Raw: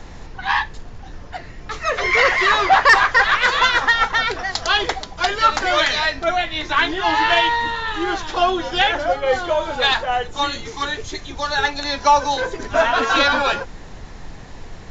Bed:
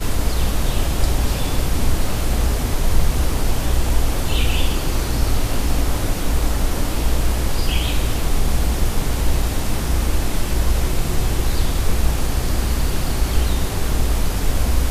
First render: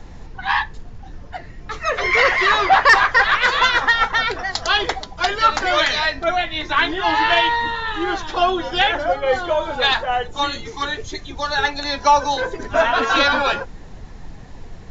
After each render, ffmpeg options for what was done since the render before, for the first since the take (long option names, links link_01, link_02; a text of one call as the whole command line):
ffmpeg -i in.wav -af "afftdn=noise_reduction=6:noise_floor=-37" out.wav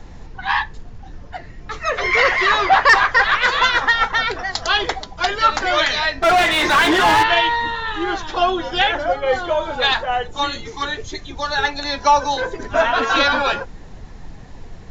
ffmpeg -i in.wav -filter_complex "[0:a]asplit=3[link_01][link_02][link_03];[link_01]afade=type=out:start_time=6.22:duration=0.02[link_04];[link_02]asplit=2[link_05][link_06];[link_06]highpass=frequency=720:poles=1,volume=32dB,asoftclip=type=tanh:threshold=-6.5dB[link_07];[link_05][link_07]amix=inputs=2:normalize=0,lowpass=frequency=2000:poles=1,volume=-6dB,afade=type=in:start_time=6.22:duration=0.02,afade=type=out:start_time=7.22:duration=0.02[link_08];[link_03]afade=type=in:start_time=7.22:duration=0.02[link_09];[link_04][link_08][link_09]amix=inputs=3:normalize=0" out.wav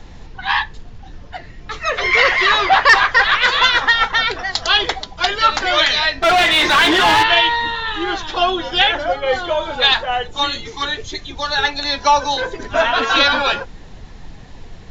ffmpeg -i in.wav -af "equalizer=frequency=3400:width=1.1:gain=6" out.wav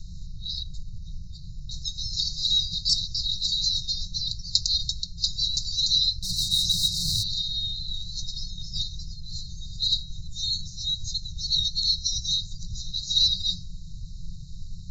ffmpeg -i in.wav -af "afftfilt=real='re*(1-between(b*sr/4096,190,3700))':imag='im*(1-between(b*sr/4096,190,3700))':win_size=4096:overlap=0.75,bandreject=frequency=320.9:width_type=h:width=4,bandreject=frequency=641.8:width_type=h:width=4,bandreject=frequency=962.7:width_type=h:width=4,bandreject=frequency=1283.6:width_type=h:width=4,bandreject=frequency=1604.5:width_type=h:width=4,bandreject=frequency=1925.4:width_type=h:width=4,bandreject=frequency=2246.3:width_type=h:width=4,bandreject=frequency=2567.2:width_type=h:width=4,bandreject=frequency=2888.1:width_type=h:width=4,bandreject=frequency=3209:width_type=h:width=4,bandreject=frequency=3529.9:width_type=h:width=4,bandreject=frequency=3850.8:width_type=h:width=4,bandreject=frequency=4171.7:width_type=h:width=4,bandreject=frequency=4492.6:width_type=h:width=4,bandreject=frequency=4813.5:width_type=h:width=4,bandreject=frequency=5134.4:width_type=h:width=4,bandreject=frequency=5455.3:width_type=h:width=4,bandreject=frequency=5776.2:width_type=h:width=4,bandreject=frequency=6097.1:width_type=h:width=4" out.wav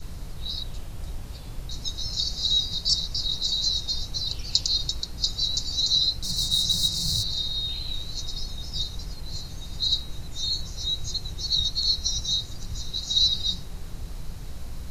ffmpeg -i in.wav -i bed.wav -filter_complex "[1:a]volume=-22dB[link_01];[0:a][link_01]amix=inputs=2:normalize=0" out.wav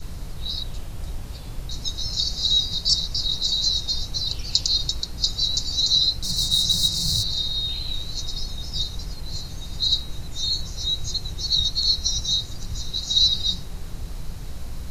ffmpeg -i in.wav -af "volume=3dB,alimiter=limit=-2dB:level=0:latency=1" out.wav